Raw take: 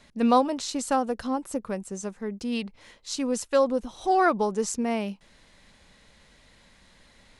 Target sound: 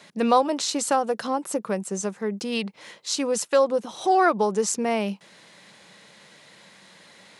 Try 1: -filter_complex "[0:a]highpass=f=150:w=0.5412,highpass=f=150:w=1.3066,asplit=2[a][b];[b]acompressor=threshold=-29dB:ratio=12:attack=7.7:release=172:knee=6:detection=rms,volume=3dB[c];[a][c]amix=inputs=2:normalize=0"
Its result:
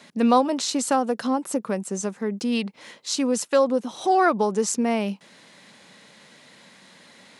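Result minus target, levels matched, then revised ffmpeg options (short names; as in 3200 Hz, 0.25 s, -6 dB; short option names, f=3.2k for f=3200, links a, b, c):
250 Hz band +3.5 dB
-filter_complex "[0:a]highpass=f=150:w=0.5412,highpass=f=150:w=1.3066,equalizer=f=250:t=o:w=0.22:g=-11.5,asplit=2[a][b];[b]acompressor=threshold=-29dB:ratio=12:attack=7.7:release=172:knee=6:detection=rms,volume=3dB[c];[a][c]amix=inputs=2:normalize=0"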